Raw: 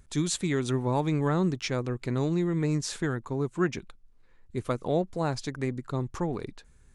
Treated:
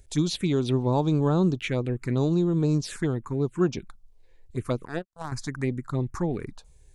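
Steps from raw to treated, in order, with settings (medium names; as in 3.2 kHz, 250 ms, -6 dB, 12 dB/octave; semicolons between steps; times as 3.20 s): 4.85–5.32 s: power-law waveshaper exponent 3; touch-sensitive phaser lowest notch 190 Hz, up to 2 kHz, full sweep at -23.5 dBFS; trim +4 dB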